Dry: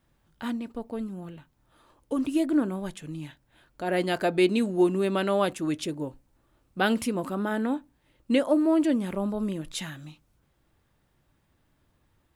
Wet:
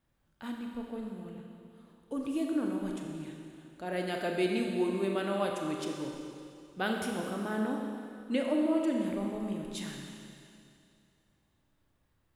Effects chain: Schroeder reverb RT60 2.5 s, combs from 29 ms, DRR 1 dB; trim -8.5 dB

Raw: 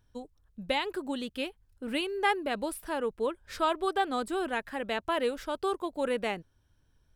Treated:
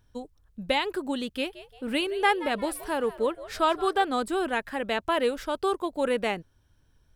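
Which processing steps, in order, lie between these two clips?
1.35–4.04 s: frequency-shifting echo 174 ms, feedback 38%, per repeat +95 Hz, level -16 dB; trim +4 dB

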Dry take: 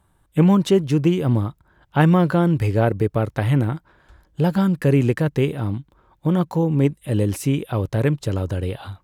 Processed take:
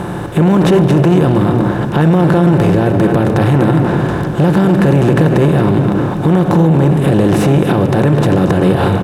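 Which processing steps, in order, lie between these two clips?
spectral levelling over time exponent 0.4; treble shelf 2.8 kHz -8.5 dB; echo from a far wall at 41 m, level -11 dB; simulated room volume 3800 m³, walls mixed, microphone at 0.81 m; loudness maximiser +9 dB; transformer saturation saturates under 210 Hz

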